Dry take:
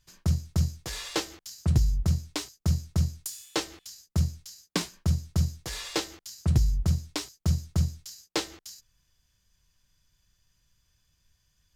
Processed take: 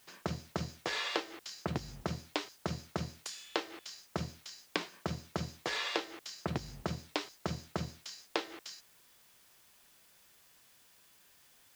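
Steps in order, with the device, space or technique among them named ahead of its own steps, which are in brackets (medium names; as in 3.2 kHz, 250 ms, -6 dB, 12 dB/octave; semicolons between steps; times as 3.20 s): baby monitor (band-pass 340–3100 Hz; compression 10:1, threshold -39 dBFS, peak gain reduction 13.5 dB; white noise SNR 23 dB); trim +8 dB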